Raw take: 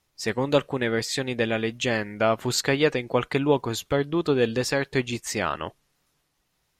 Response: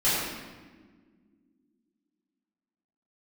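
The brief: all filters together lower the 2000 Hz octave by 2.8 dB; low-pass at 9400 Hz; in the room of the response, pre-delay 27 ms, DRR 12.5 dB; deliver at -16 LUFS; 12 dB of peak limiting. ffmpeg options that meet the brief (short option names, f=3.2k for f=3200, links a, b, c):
-filter_complex "[0:a]lowpass=9.4k,equalizer=f=2k:t=o:g=-3.5,alimiter=limit=-20dB:level=0:latency=1,asplit=2[a][b];[1:a]atrim=start_sample=2205,adelay=27[c];[b][c]afir=irnorm=-1:irlink=0,volume=-26.5dB[d];[a][d]amix=inputs=2:normalize=0,volume=14.5dB"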